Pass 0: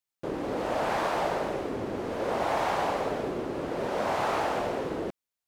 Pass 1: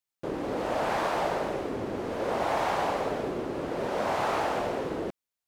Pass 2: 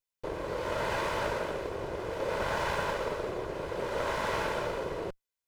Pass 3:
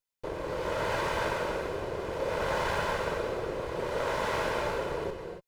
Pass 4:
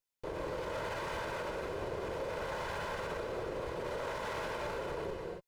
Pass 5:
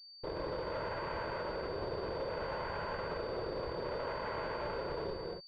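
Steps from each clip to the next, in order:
no audible change
comb filter that takes the minimum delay 2 ms; trim -1.5 dB
gated-style reverb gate 310 ms rising, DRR 4.5 dB
peak limiter -28.5 dBFS, peak gain reduction 11 dB; trim -1.5 dB
class-D stage that switches slowly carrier 4.6 kHz

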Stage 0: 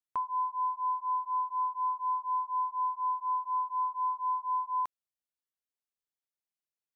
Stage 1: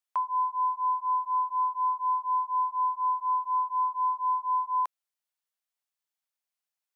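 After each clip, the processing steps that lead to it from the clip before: high-pass 590 Hz 24 dB/octave; trim +4 dB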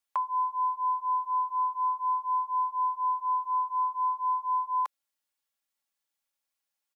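comb 3.6 ms; trim +2 dB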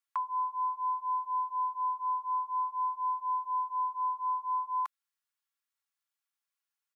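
resonant high-pass 1.2 kHz, resonance Q 1.7; trim -5.5 dB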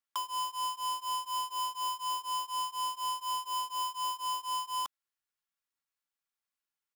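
square wave that keeps the level; trim -5.5 dB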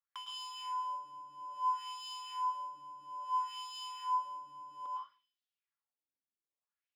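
reverberation RT60 0.50 s, pre-delay 105 ms, DRR 1 dB; LFO band-pass sine 0.6 Hz 250–3600 Hz

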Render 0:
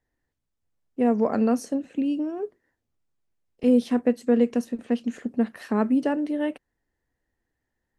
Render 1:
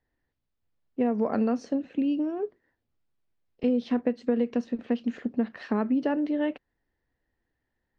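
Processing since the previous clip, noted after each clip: low-pass 4.8 kHz 24 dB/octave; compression, threshold -21 dBFS, peak gain reduction 7.5 dB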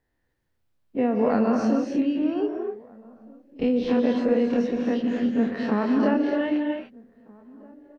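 every event in the spectrogram widened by 60 ms; echo from a far wall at 270 m, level -25 dB; gated-style reverb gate 310 ms rising, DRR 2 dB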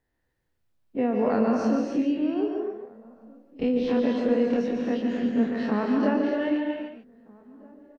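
delay 143 ms -8 dB; trim -2 dB

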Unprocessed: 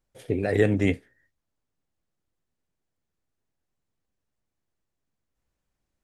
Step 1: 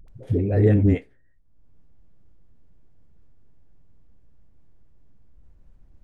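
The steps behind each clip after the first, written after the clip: tilt EQ -4 dB/octave; upward compressor, threshold -30 dBFS; phase dispersion highs, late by 83 ms, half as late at 360 Hz; trim -4 dB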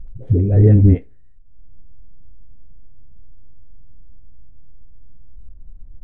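tilt EQ -3.5 dB/octave; trim -3 dB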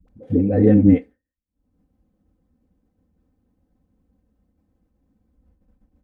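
expander -27 dBFS; Bessel high-pass 180 Hz, order 2; comb 3.9 ms, depth 99%; trim +1.5 dB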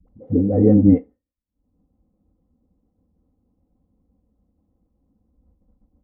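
Savitzky-Golay filter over 65 samples

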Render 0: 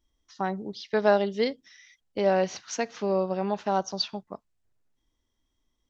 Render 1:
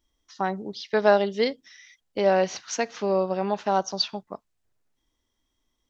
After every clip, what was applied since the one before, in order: bass shelf 260 Hz -5 dB; trim +3.5 dB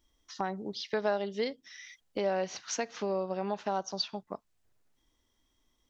compression 2:1, threshold -39 dBFS, peak gain reduction 14.5 dB; trim +2 dB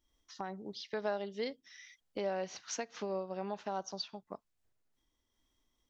random flutter of the level, depth 60%; trim -3 dB

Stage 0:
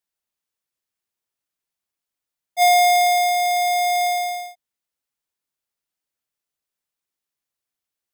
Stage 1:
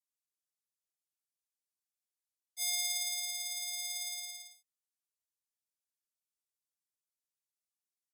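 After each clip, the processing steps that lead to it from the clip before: band-pass filter 6 kHz, Q 0.7; differentiator; delay 76 ms -7 dB; trim -7 dB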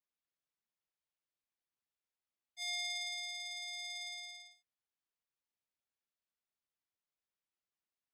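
low-pass 3.6 kHz 12 dB/octave; trim +1.5 dB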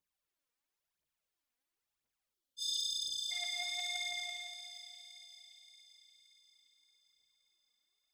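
phaser 0.97 Hz, delay 4.3 ms, feedback 67%; spectral selection erased 2.34–3.32 s, 640–2900 Hz; two-band feedback delay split 2.2 kHz, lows 239 ms, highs 575 ms, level -9.5 dB; trim +1.5 dB

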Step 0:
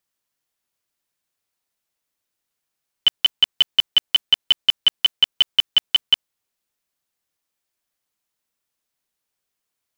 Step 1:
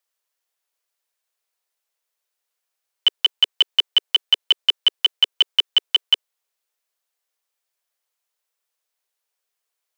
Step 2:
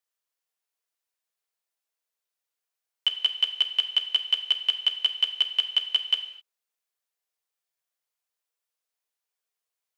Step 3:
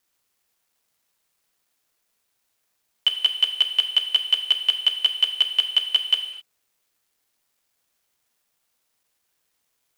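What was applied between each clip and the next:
steep high-pass 400 Hz 48 dB/octave
gated-style reverb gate 280 ms falling, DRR 7 dB; trim -7.5 dB
companding laws mixed up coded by mu; trim +3.5 dB

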